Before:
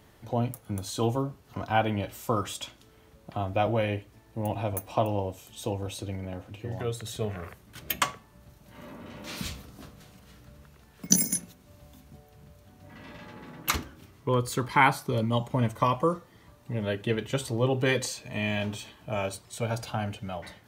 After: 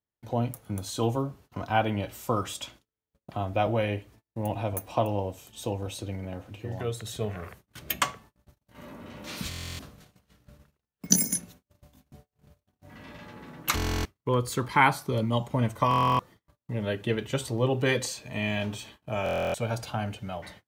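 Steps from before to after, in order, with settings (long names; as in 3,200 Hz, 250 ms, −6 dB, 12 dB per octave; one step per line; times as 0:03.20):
noise gate −50 dBFS, range −38 dB
buffer that repeats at 0:09.49/0:13.75/0:15.89/0:19.24, samples 1,024, times 12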